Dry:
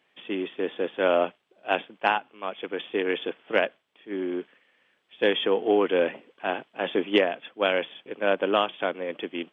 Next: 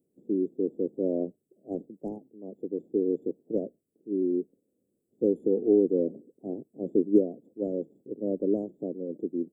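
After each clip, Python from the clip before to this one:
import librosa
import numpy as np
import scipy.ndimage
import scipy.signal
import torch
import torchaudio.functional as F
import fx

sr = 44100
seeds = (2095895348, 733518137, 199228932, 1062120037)

y = scipy.signal.sosfilt(scipy.signal.cheby2(4, 70, [1200.0, 3300.0], 'bandstop', fs=sr, output='sos'), x)
y = y * librosa.db_to_amplitude(4.0)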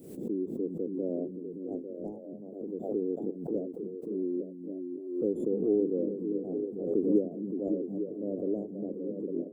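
y = fx.echo_stepped(x, sr, ms=283, hz=160.0, octaves=0.7, feedback_pct=70, wet_db=-1.5)
y = fx.pre_swell(y, sr, db_per_s=67.0)
y = y * librosa.db_to_amplitude(-5.5)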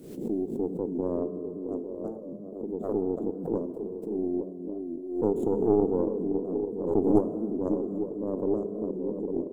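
y = fx.tracing_dist(x, sr, depth_ms=0.27)
y = fx.rev_fdn(y, sr, rt60_s=2.4, lf_ratio=1.0, hf_ratio=0.85, size_ms=14.0, drr_db=11.0)
y = fx.record_warp(y, sr, rpm=45.0, depth_cents=100.0)
y = y * librosa.db_to_amplitude(3.0)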